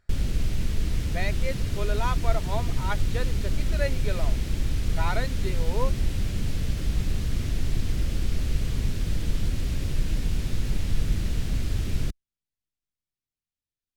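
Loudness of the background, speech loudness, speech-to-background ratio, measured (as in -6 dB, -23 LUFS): -30.0 LUFS, -34.5 LUFS, -4.5 dB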